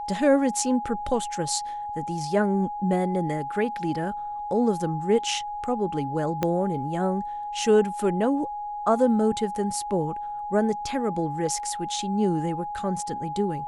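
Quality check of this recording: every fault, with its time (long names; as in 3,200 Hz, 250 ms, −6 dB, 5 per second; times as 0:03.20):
whistle 830 Hz −30 dBFS
0:06.43: click −11 dBFS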